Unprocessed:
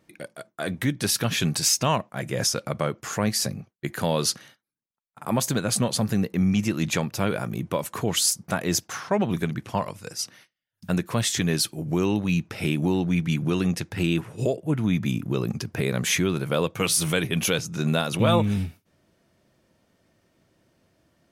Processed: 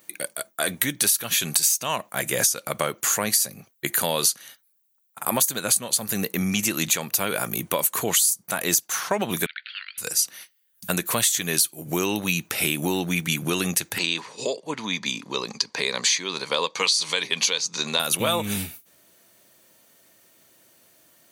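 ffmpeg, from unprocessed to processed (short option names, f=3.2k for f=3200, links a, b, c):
-filter_complex "[0:a]asettb=1/sr,asplit=3[a][b][c];[a]atrim=end=9.464[d];[b]atrim=start=9.46:end=9.98,asetpts=PTS-STARTPTS,afade=t=in:d=0.004:c=qsin,afade=t=out:st=0.516:d=0.004:c=qsin,asuperpass=centerf=2500:order=20:qfactor=0.81[e];[c]atrim=start=9.976[f];[d][e]acrossfade=d=0.004:c1=hsin:c2=qsin[g];[g][f]acrossfade=d=0.004:c1=qsin:c2=hsin,asettb=1/sr,asplit=3[h][i][j];[h]atrim=end=13.984[k];[i]atrim=start=13.98:end=18,asetpts=PTS-STARTPTS,afade=t=in:d=0.004:c=qsin,afade=t=out:st=4.016:d=0.004:c=qsin,highpass=300,equalizer=f=340:t=q:w=4:g=-8,equalizer=f=670:t=q:w=4:g=-8,equalizer=f=990:t=q:w=4:g=7,equalizer=f=1.4k:t=q:w=4:g=-8,equalizer=f=2.8k:t=q:w=4:g=-4,equalizer=f=4.5k:t=q:w=4:g=10,lowpass=f=6.2k:w=0.5412,lowpass=f=6.2k:w=1.3066[l];[j]atrim=start=17.996[m];[k][l]acrossfade=d=0.004:c1=hsin:c2=qsin[n];[n][m]acrossfade=d=0.004:c1=qsin:c2=hsin,aemphasis=mode=production:type=riaa,bandreject=f=5.2k:w=8.5,acompressor=threshold=-24dB:ratio=8,volume=5.5dB"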